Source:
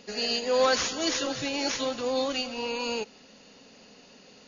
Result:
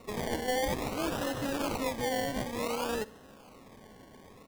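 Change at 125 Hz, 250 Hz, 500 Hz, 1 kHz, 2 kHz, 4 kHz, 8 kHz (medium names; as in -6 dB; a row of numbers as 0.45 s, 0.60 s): +8.5 dB, -1.5 dB, -5.0 dB, -2.0 dB, -4.5 dB, -11.0 dB, no reading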